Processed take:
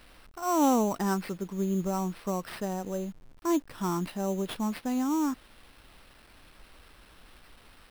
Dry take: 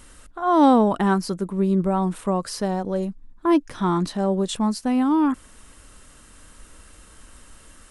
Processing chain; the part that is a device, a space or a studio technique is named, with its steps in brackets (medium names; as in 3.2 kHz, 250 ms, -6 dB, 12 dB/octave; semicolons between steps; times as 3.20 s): early 8-bit sampler (sample-rate reducer 6.8 kHz, jitter 0%; bit crusher 8-bit); trim -8.5 dB